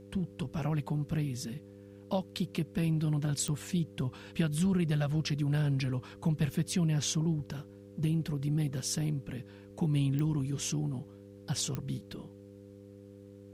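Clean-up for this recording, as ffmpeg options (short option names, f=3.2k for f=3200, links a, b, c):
-af "adeclick=t=4,bandreject=f=100:t=h:w=4,bandreject=f=200:t=h:w=4,bandreject=f=300:t=h:w=4,bandreject=f=400:t=h:w=4,bandreject=f=500:t=h:w=4,agate=range=-21dB:threshold=-43dB"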